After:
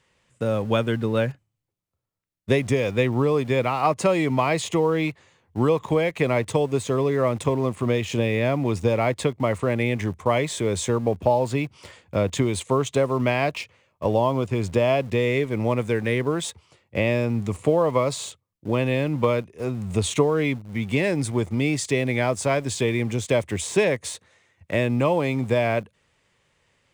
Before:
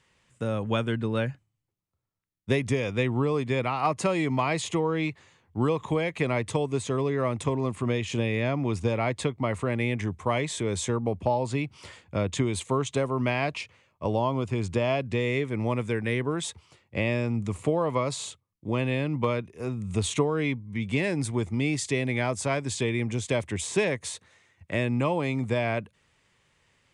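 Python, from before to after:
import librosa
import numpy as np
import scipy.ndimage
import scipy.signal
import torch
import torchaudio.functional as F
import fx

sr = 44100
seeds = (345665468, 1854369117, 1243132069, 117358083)

p1 = np.where(np.abs(x) >= 10.0 ** (-36.5 / 20.0), x, 0.0)
p2 = x + (p1 * librosa.db_to_amplitude(-7.0))
y = fx.peak_eq(p2, sr, hz=540.0, db=4.0, octaves=0.78)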